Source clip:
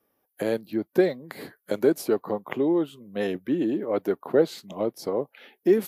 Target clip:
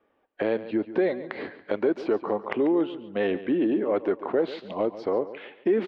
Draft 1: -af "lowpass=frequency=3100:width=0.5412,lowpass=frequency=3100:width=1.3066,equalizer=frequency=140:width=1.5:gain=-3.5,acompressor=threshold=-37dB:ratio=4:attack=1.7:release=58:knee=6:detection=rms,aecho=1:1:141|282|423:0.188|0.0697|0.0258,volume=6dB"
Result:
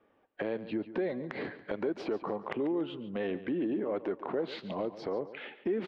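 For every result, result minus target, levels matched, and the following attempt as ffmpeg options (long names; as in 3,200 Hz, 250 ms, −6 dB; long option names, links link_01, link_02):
downward compressor: peak gain reduction +9.5 dB; 125 Hz band +5.0 dB
-af "lowpass=frequency=3100:width=0.5412,lowpass=frequency=3100:width=1.3066,equalizer=frequency=140:width=1.5:gain=-3.5,acompressor=threshold=-25dB:ratio=4:attack=1.7:release=58:knee=6:detection=rms,aecho=1:1:141|282|423:0.188|0.0697|0.0258,volume=6dB"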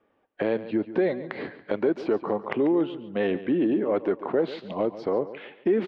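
125 Hz band +3.5 dB
-af "lowpass=frequency=3100:width=0.5412,lowpass=frequency=3100:width=1.3066,equalizer=frequency=140:width=1.5:gain=-11,acompressor=threshold=-25dB:ratio=4:attack=1.7:release=58:knee=6:detection=rms,aecho=1:1:141|282|423:0.188|0.0697|0.0258,volume=6dB"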